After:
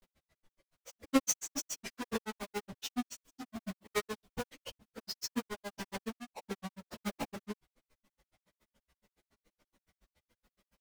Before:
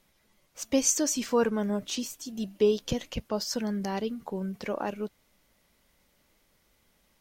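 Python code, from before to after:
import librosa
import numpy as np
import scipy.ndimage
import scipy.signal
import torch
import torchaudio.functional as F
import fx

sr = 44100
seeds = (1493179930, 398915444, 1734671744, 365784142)

y = fx.halfwave_hold(x, sr)
y = fx.stretch_vocoder_free(y, sr, factor=1.5)
y = fx.granulator(y, sr, seeds[0], grain_ms=74.0, per_s=7.1, spray_ms=32.0, spread_st=0)
y = y * 10.0 ** (-3.5 / 20.0)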